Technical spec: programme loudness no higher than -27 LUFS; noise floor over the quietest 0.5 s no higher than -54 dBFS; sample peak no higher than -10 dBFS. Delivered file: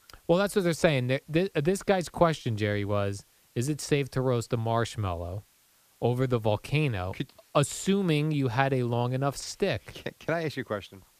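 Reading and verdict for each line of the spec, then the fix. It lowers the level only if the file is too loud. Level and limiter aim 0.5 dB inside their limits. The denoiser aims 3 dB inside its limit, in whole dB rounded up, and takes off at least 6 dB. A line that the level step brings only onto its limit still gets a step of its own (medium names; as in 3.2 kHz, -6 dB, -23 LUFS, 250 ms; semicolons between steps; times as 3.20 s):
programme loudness -28.5 LUFS: pass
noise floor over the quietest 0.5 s -64 dBFS: pass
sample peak -7.0 dBFS: fail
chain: peak limiter -10.5 dBFS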